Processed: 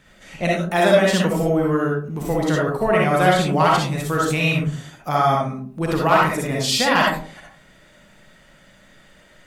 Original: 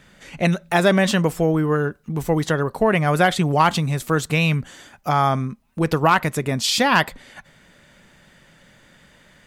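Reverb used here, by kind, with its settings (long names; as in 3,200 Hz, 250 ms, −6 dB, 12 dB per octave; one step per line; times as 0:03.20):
comb and all-pass reverb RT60 0.48 s, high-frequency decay 0.35×, pre-delay 20 ms, DRR −3.5 dB
level −4 dB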